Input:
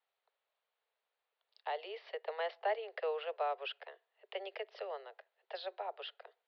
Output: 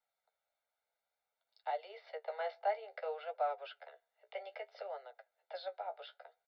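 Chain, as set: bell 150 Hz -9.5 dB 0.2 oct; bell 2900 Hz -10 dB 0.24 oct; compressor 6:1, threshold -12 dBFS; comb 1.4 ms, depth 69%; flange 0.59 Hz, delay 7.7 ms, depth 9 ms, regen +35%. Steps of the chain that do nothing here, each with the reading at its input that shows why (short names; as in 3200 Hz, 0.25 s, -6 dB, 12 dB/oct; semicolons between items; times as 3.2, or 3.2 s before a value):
bell 150 Hz: input band starts at 340 Hz; compressor, threshold -12 dBFS: input peak -24.0 dBFS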